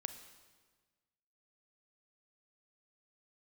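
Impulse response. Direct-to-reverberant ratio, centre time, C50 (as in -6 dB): 9.0 dB, 15 ms, 10.0 dB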